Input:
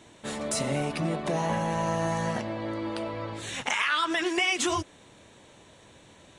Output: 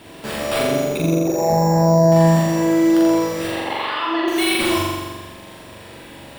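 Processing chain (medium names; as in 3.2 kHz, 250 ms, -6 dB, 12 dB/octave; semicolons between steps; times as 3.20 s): 0.60–2.12 s: resonances exaggerated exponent 3; dynamic bell 1.2 kHz, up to -4 dB, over -37 dBFS, Q 0.77; in parallel at +2 dB: compression, threshold -37 dBFS, peak gain reduction 13 dB; on the sum: sample-and-hold 7×; saturation -19.5 dBFS, distortion -19 dB; 3.47–4.28 s: cabinet simulation 250–3200 Hz, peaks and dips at 580 Hz +4 dB, 1 kHz +4 dB, 1.5 kHz -8 dB, 2.3 kHz -8 dB; flutter echo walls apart 7.3 m, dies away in 1.4 s; on a send at -8.5 dB: reverberation RT60 0.70 s, pre-delay 7 ms; on the sum: trim +2.5 dB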